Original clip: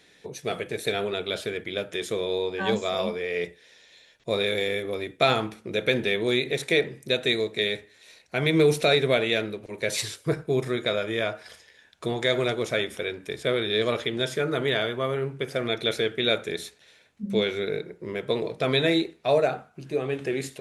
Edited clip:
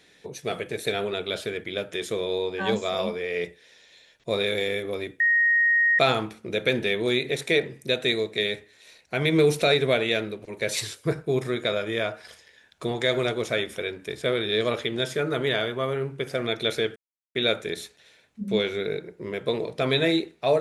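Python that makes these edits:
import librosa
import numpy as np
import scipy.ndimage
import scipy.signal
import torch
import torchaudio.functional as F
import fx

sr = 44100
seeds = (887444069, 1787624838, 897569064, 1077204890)

y = fx.edit(x, sr, fx.insert_tone(at_s=5.2, length_s=0.79, hz=1870.0, db=-17.0),
    fx.insert_silence(at_s=16.17, length_s=0.39), tone=tone)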